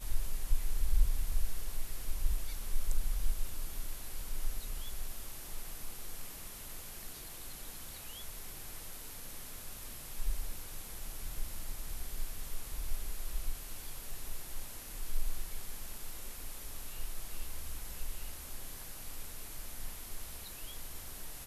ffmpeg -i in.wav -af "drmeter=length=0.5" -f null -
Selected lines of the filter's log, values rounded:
Channel 1: DR: 8.2
Overall DR: 8.2